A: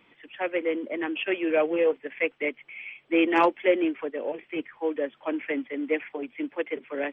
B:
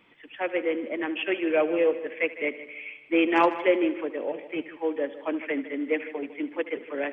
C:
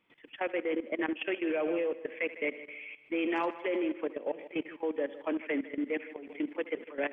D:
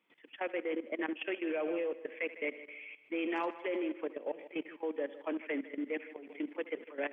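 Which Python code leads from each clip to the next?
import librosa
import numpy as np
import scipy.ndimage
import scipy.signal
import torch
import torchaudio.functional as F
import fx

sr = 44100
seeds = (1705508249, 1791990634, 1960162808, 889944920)

y1 = fx.echo_heads(x, sr, ms=77, heads='first and second', feedback_pct=46, wet_db=-17.0)
y2 = fx.level_steps(y1, sr, step_db=15)
y3 = scipy.signal.sosfilt(scipy.signal.butter(2, 200.0, 'highpass', fs=sr, output='sos'), y2)
y3 = F.gain(torch.from_numpy(y3), -3.5).numpy()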